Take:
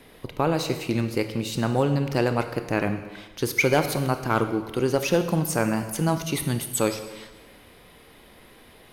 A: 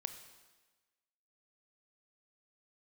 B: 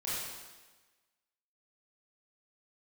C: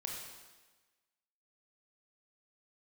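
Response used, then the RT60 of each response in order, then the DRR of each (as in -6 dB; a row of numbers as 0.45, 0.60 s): A; 1.3, 1.3, 1.3 s; 8.0, -10.0, -1.0 dB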